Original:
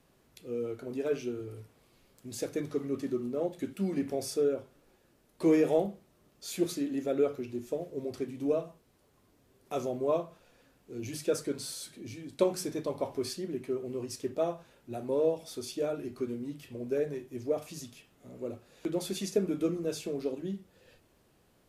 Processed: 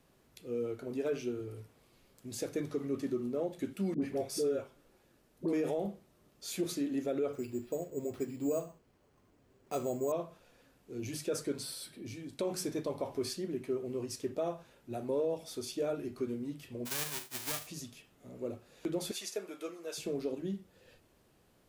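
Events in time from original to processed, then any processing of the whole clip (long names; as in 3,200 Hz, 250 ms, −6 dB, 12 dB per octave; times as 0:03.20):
0:03.94–0:05.53: all-pass dispersion highs, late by 81 ms, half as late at 750 Hz
0:07.33–0:10.12: bad sample-rate conversion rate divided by 6×, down filtered, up hold
0:11.63–0:12.06: parametric band 6,600 Hz −14.5 dB 0.24 octaves
0:16.85–0:17.66: spectral envelope flattened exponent 0.1
0:19.11–0:19.98: high-pass filter 710 Hz
whole clip: brickwall limiter −24 dBFS; level −1 dB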